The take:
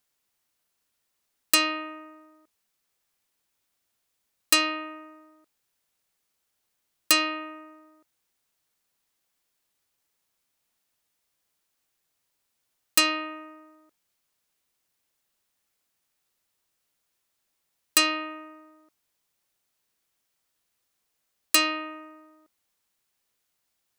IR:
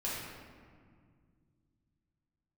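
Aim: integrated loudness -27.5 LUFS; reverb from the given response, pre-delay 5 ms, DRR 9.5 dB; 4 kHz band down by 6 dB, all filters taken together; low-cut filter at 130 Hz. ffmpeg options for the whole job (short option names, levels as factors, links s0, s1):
-filter_complex "[0:a]highpass=130,equalizer=f=4000:t=o:g=-8,asplit=2[s0][s1];[1:a]atrim=start_sample=2205,adelay=5[s2];[s1][s2]afir=irnorm=-1:irlink=0,volume=0.2[s3];[s0][s3]amix=inputs=2:normalize=0,volume=0.841"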